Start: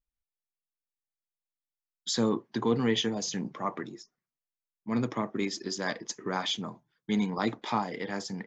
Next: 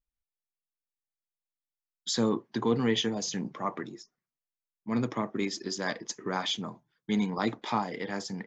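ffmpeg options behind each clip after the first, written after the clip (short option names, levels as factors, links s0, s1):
-af anull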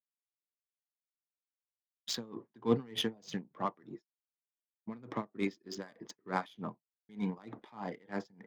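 -af "adynamicsmooth=sensitivity=3.5:basefreq=2200,agate=range=0.0224:threshold=0.00708:ratio=3:detection=peak,aeval=exprs='val(0)*pow(10,-27*(0.5-0.5*cos(2*PI*3.3*n/s))/20)':c=same"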